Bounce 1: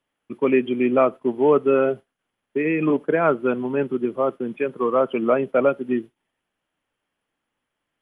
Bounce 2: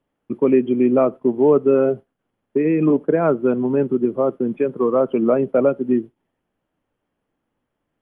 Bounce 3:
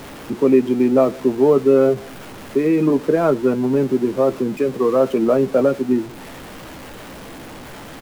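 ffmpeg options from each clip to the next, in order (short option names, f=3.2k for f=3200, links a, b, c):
-filter_complex "[0:a]tiltshelf=f=1.1k:g=8.5,asplit=2[a][b];[b]acompressor=threshold=-19dB:ratio=6,volume=1.5dB[c];[a][c]amix=inputs=2:normalize=0,volume=-6dB"
-filter_complex "[0:a]aeval=exprs='val(0)+0.5*0.0316*sgn(val(0))':c=same,asplit=2[a][b];[b]adelay=15,volume=-11.5dB[c];[a][c]amix=inputs=2:normalize=0"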